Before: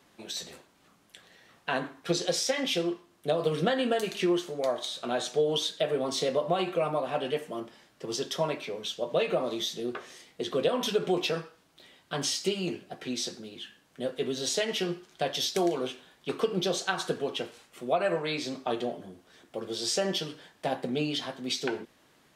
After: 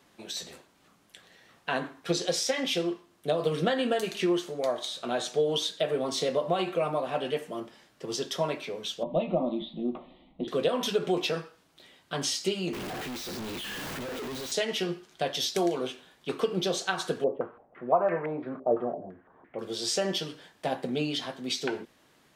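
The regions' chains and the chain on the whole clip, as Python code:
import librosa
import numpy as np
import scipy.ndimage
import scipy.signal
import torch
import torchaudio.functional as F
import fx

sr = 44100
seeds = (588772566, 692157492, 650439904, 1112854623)

y = fx.chain(x, sr, fx.steep_lowpass(hz=3900.0, slope=72),
    fx.tilt_eq(slope=-4.0),
    fx.fixed_phaser(hz=430.0, stages=6), at=(9.03, 10.48))
y = fx.chain(y, sr, fx.clip_1bit(),
    fx.peak_eq(hz=9900.0, db=-6.0, octaves=2.0), at=(12.73, 14.52))
y = fx.chain(y, sr, fx.air_absorb(metres=480.0),
    fx.filter_held_lowpass(hz=5.9, low_hz=570.0, high_hz=2100.0), at=(17.24, 19.59))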